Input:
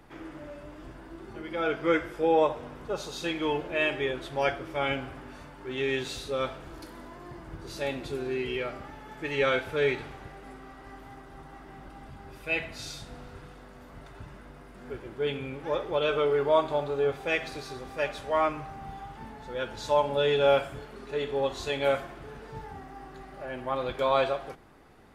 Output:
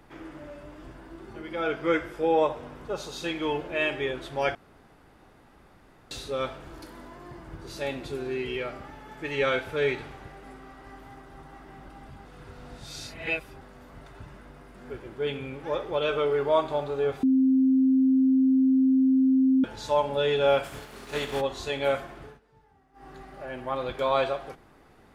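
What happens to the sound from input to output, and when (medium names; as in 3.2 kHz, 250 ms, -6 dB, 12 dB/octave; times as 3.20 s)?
4.55–6.11 s: room tone
12.25–13.61 s: reverse
17.23–19.64 s: bleep 263 Hz -17.5 dBFS
20.63–21.40 s: spectral contrast reduction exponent 0.64
22.24–23.09 s: dip -19.5 dB, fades 0.16 s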